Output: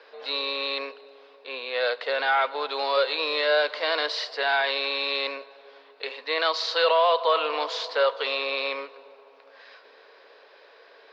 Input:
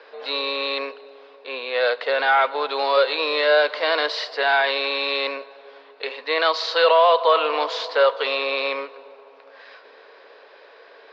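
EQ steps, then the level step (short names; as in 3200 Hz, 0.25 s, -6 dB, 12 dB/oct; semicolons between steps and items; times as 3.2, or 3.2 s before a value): high shelf 4600 Hz +8 dB; -5.5 dB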